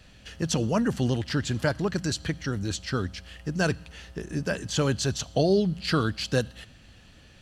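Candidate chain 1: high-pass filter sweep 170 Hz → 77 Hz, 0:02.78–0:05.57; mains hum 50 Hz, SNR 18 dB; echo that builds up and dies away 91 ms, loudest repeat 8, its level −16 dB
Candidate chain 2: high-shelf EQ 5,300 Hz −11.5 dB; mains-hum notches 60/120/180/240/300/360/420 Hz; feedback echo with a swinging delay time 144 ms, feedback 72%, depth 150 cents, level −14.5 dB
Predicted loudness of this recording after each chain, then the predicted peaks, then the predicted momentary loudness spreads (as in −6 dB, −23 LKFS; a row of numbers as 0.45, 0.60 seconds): −25.0, −28.5 LKFS; −8.0, −12.0 dBFS; 8, 13 LU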